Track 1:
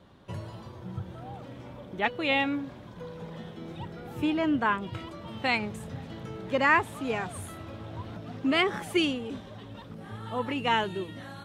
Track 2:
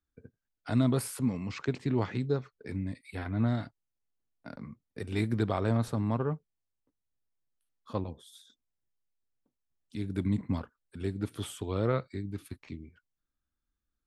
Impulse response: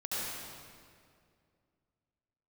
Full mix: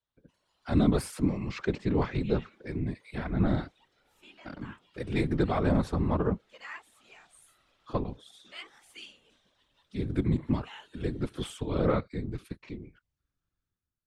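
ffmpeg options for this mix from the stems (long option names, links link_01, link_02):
-filter_complex "[0:a]aderivative,volume=-12.5dB[link_01];[1:a]volume=-2.5dB,asplit=2[link_02][link_03];[link_03]apad=whole_len=504828[link_04];[link_01][link_04]sidechaincompress=threshold=-39dB:ratio=8:attack=28:release=145[link_05];[link_05][link_02]amix=inputs=2:normalize=0,dynaudnorm=framelen=120:gausssize=9:maxgain=11dB,afftfilt=real='hypot(re,im)*cos(2*PI*random(0))':imag='hypot(re,im)*sin(2*PI*random(1))':win_size=512:overlap=0.75,adynamicsmooth=sensitivity=4:basefreq=7700"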